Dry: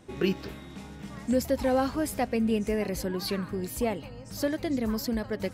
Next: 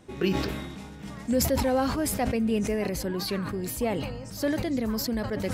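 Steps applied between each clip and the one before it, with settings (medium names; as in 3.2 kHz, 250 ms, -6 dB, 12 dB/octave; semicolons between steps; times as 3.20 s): decay stretcher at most 37 dB/s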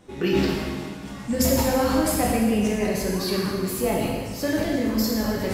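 plate-style reverb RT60 1.5 s, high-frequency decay 1×, DRR -3.5 dB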